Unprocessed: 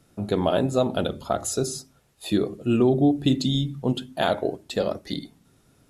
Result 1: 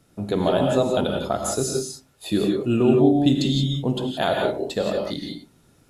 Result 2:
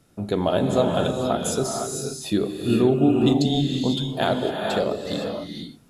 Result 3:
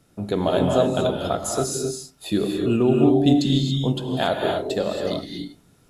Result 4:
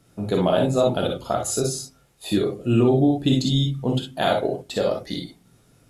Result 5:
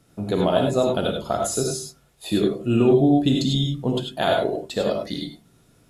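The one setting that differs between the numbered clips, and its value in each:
reverb whose tail is shaped and stops, gate: 200, 530, 300, 80, 120 milliseconds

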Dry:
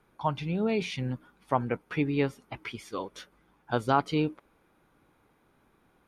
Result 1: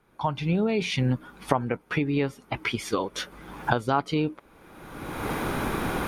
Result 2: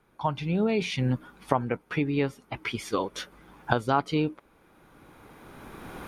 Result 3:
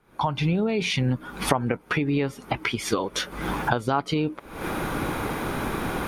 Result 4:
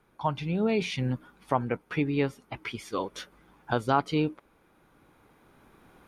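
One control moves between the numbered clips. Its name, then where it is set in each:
camcorder AGC, rising by: 34, 14, 86, 5.1 dB per second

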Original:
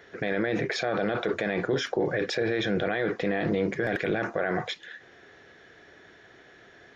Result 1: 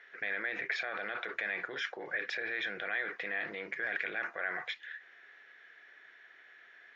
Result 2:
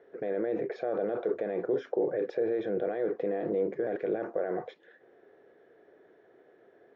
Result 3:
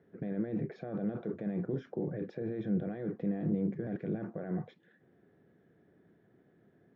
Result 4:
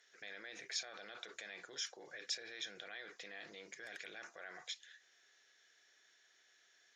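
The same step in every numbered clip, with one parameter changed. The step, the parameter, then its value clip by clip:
resonant band-pass, frequency: 2,000, 460, 180, 7,100 Hertz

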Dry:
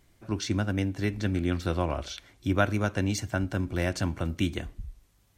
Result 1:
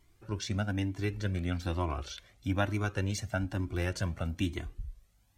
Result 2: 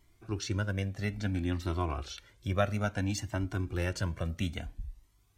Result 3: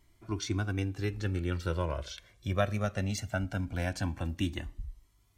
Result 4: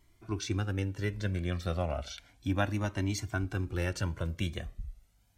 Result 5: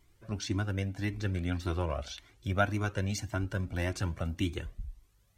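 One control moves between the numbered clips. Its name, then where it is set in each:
flanger whose copies keep moving one way, speed: 1.1, 0.59, 0.2, 0.33, 1.8 Hertz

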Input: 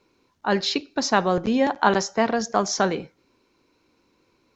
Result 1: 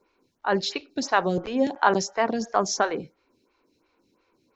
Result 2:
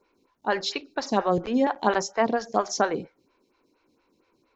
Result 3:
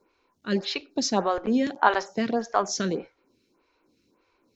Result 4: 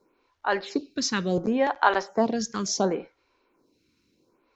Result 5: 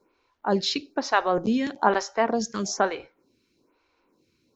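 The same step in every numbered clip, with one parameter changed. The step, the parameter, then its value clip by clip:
phaser with staggered stages, speed: 2.9, 4.3, 1.7, 0.7, 1.1 Hertz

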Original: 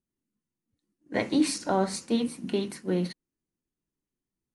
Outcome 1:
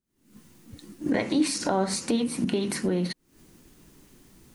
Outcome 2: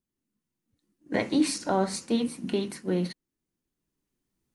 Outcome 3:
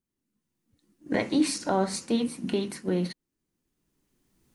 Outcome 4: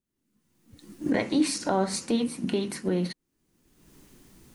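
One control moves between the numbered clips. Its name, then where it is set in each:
camcorder AGC, rising by: 91, 5.7, 14, 36 dB per second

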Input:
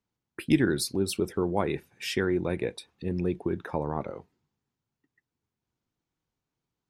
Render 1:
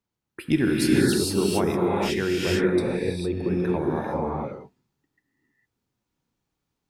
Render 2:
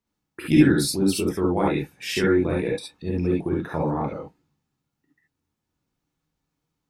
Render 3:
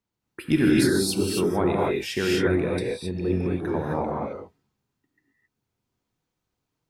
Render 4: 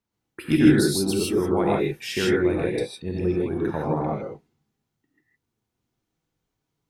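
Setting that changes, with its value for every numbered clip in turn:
reverb whose tail is shaped and stops, gate: 480, 90, 290, 180 milliseconds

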